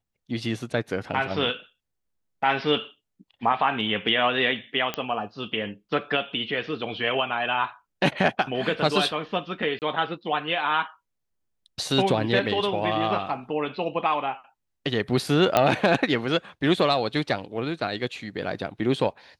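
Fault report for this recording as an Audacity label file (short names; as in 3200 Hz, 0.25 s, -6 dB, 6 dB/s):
4.940000	4.940000	pop -12 dBFS
9.790000	9.820000	gap 28 ms
15.570000	15.570000	pop -5 dBFS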